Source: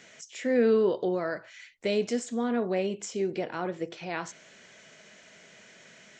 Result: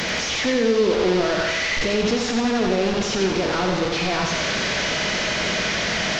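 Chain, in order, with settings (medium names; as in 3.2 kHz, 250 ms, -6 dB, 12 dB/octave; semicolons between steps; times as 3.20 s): one-bit delta coder 32 kbps, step -24.5 dBFS; bass shelf 220 Hz +5 dB; peak limiter -18.5 dBFS, peak gain reduction 6.5 dB; thinning echo 89 ms, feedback 59%, high-pass 230 Hz, level -4.5 dB; on a send at -12 dB: reverberation RT60 0.95 s, pre-delay 8 ms; on the sum: trim +5.5 dB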